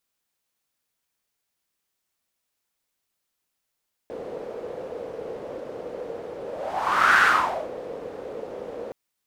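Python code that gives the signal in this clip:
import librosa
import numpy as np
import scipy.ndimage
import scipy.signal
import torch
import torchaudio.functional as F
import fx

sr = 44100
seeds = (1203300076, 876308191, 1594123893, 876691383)

y = fx.whoosh(sr, seeds[0], length_s=4.82, peak_s=3.11, rise_s=0.81, fall_s=0.55, ends_hz=490.0, peak_hz=1500.0, q=5.6, swell_db=18.0)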